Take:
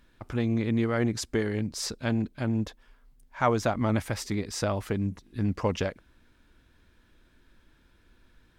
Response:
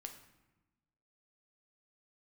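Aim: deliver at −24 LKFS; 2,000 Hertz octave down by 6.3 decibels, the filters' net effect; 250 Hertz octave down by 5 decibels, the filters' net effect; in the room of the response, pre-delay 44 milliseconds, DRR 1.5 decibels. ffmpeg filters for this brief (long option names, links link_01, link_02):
-filter_complex "[0:a]equalizer=frequency=250:width_type=o:gain=-6,equalizer=frequency=2000:width_type=o:gain=-8.5,asplit=2[link_01][link_02];[1:a]atrim=start_sample=2205,adelay=44[link_03];[link_02][link_03]afir=irnorm=-1:irlink=0,volume=3dB[link_04];[link_01][link_04]amix=inputs=2:normalize=0,volume=5.5dB"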